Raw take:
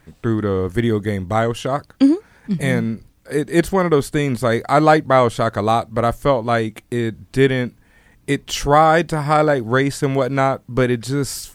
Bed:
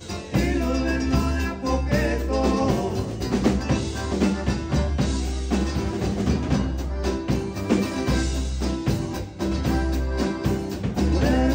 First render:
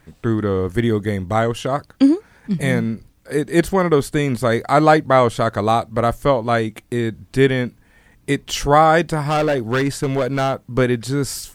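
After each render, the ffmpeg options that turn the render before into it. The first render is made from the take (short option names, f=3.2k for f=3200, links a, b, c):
-filter_complex "[0:a]asettb=1/sr,asplit=3[a][b][c];[a]atrim=end=9.214[d];[b]atrim=start=9.21:end=10.67,asetpts=PTS-STARTPTS,afade=t=in:d=0.004:c=qsin,afade=t=out:st=1.456:d=0.004:c=qsin,volume=14dB,asoftclip=hard,volume=-14dB[e];[c]atrim=start=10.666[f];[d][e]acrossfade=d=0.004:c1=hsin:c2=qsin[g];[g][f]acrossfade=d=0.004:c1=qsin:c2=hsin"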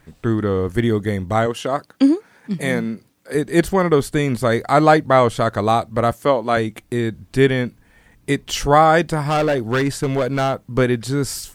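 -filter_complex "[0:a]asettb=1/sr,asplit=3[a][b][c];[a]atrim=end=1.464[d];[b]atrim=start=1.46:end=3.35,asetpts=PTS-STARTPTS,afade=t=in:d=0.004:c=qsin,afade=t=out:st=1.886:d=0.004:c=qsin,highpass=190[e];[c]atrim=start=3.346[f];[d][e]acrossfade=d=0.004:c1=hsin:c2=qsin[g];[g][f]acrossfade=d=0.004:c1=qsin:c2=hsin,asettb=1/sr,asplit=3[h][i][j];[h]atrim=end=6.124[k];[i]atrim=start=6.12:end=6.57,asetpts=PTS-STARTPTS,afade=t=in:d=0.004:c=qsin,afade=t=out:st=0.446:d=0.004:c=qsin,highpass=190[l];[j]atrim=start=6.566[m];[k][l]acrossfade=d=0.004:c1=hsin:c2=qsin[n];[n][m]acrossfade=d=0.004:c1=qsin:c2=hsin"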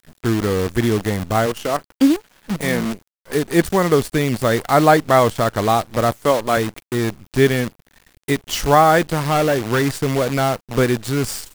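-af "acrusher=bits=5:dc=4:mix=0:aa=0.000001"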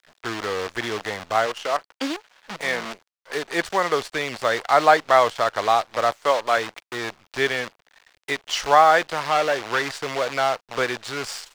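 -filter_complex "[0:a]acrossover=split=520 6500:gain=0.1 1 0.141[a][b][c];[a][b][c]amix=inputs=3:normalize=0"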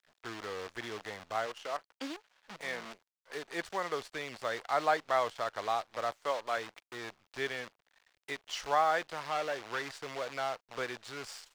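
-af "volume=-13.5dB"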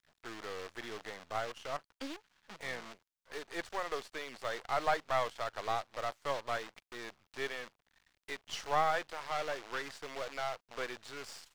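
-af "aeval=exprs='if(lt(val(0),0),0.447*val(0),val(0))':c=same"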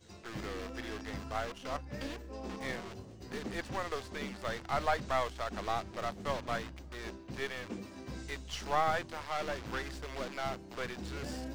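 -filter_complex "[1:a]volume=-21.5dB[a];[0:a][a]amix=inputs=2:normalize=0"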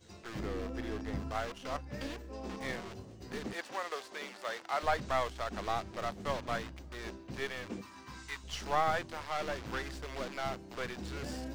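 -filter_complex "[0:a]asettb=1/sr,asplit=3[a][b][c];[a]atrim=end=0.394[d];[b]atrim=start=0.39:end=1.31,asetpts=PTS-STARTPTS,afade=t=in:d=0.004:c=qsin,afade=t=out:st=0.916:d=0.004:c=qsin,tiltshelf=f=910:g=5[e];[c]atrim=start=1.306[f];[d][e]acrossfade=d=0.004:c1=hsin:c2=qsin[g];[g][f]acrossfade=d=0.004:c1=qsin:c2=hsin,asettb=1/sr,asplit=3[h][i][j];[h]atrim=end=3.534[k];[i]atrim=start=3.53:end=4.83,asetpts=PTS-STARTPTS,afade=t=in:d=0.004:c=qsin,afade=t=out:st=1.296:d=0.004:c=qsin,highpass=440[l];[j]atrim=start=4.826[m];[k][l]acrossfade=d=0.004:c1=hsin:c2=qsin[n];[n][m]acrossfade=d=0.004:c1=qsin:c2=hsin,asettb=1/sr,asplit=3[o][p][q];[o]atrim=end=7.814[r];[p]atrim=start=7.81:end=8.44,asetpts=PTS-STARTPTS,afade=t=in:d=0.004:c=qsin,afade=t=out:st=0.626:d=0.004:c=qsin,lowshelf=f=780:t=q:w=3:g=-7.5[s];[q]atrim=start=8.436[t];[r][s]acrossfade=d=0.004:c1=hsin:c2=qsin[u];[u][t]acrossfade=d=0.004:c1=qsin:c2=hsin"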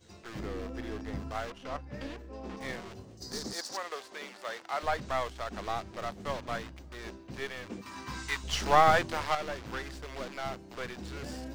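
-filter_complex "[0:a]asettb=1/sr,asplit=3[a][b][c];[a]atrim=end=1.504[d];[b]atrim=start=1.5:end=2.57,asetpts=PTS-STARTPTS,afade=t=in:d=0.004:c=qsin,afade=t=out:st=1.066:d=0.004:c=qsin,aemphasis=mode=reproduction:type=cd[e];[c]atrim=start=2.566[f];[d][e]acrossfade=d=0.004:c1=hsin:c2=qsin[g];[g][f]acrossfade=d=0.004:c1=qsin:c2=hsin,asettb=1/sr,asplit=3[h][i][j];[h]atrim=end=3.174[k];[i]atrim=start=3.17:end=3.77,asetpts=PTS-STARTPTS,afade=t=in:d=0.004:c=qsin,afade=t=out:st=0.596:d=0.004:c=qsin,highshelf=f=3.7k:t=q:w=3:g=10[l];[j]atrim=start=3.766[m];[k][l]acrossfade=d=0.004:c1=hsin:c2=qsin[n];[n][m]acrossfade=d=0.004:c1=qsin:c2=hsin,asplit=3[o][p][q];[o]atrim=end=7.862[r];[p]atrim=start=7.858:end=9.352,asetpts=PTS-STARTPTS,volume=8.5dB[s];[q]atrim=start=9.348[t];[r][s]acrossfade=d=0.004:c1=hsin:c2=hsin[u];[u][t]acrossfade=d=0.004:c1=hsin:c2=hsin"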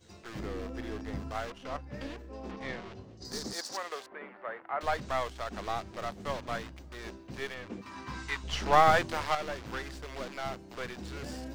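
-filter_complex "[0:a]asettb=1/sr,asplit=3[a][b][c];[a]atrim=end=2.514[d];[b]atrim=start=2.51:end=3.25,asetpts=PTS-STARTPTS,afade=t=in:d=0.004:c=qsin,afade=t=out:st=0.736:d=0.004:c=qsin,lowpass=4.5k[e];[c]atrim=start=3.246[f];[d][e]acrossfade=d=0.004:c1=hsin:c2=qsin[g];[g][f]acrossfade=d=0.004:c1=qsin:c2=hsin,asettb=1/sr,asplit=3[h][i][j];[h]atrim=end=4.064[k];[i]atrim=start=4.06:end=4.81,asetpts=PTS-STARTPTS,afade=t=in:d=0.004:c=qsin,afade=t=out:st=0.746:d=0.004:c=qsin,lowpass=f=2k:w=0.5412,lowpass=f=2k:w=1.3066[l];[j]atrim=start=4.806[m];[k][l]acrossfade=d=0.004:c1=hsin:c2=qsin[n];[n][m]acrossfade=d=0.004:c1=qsin:c2=hsin,asettb=1/sr,asplit=3[o][p][q];[o]atrim=end=7.544[r];[p]atrim=start=7.54:end=8.73,asetpts=PTS-STARTPTS,afade=t=in:d=0.004:c=qsin,afade=t=out:st=1.186:d=0.004:c=qsin,lowpass=f=3.4k:p=1[s];[q]atrim=start=8.726[t];[r][s]acrossfade=d=0.004:c1=hsin:c2=qsin[u];[u][t]acrossfade=d=0.004:c1=qsin:c2=hsin"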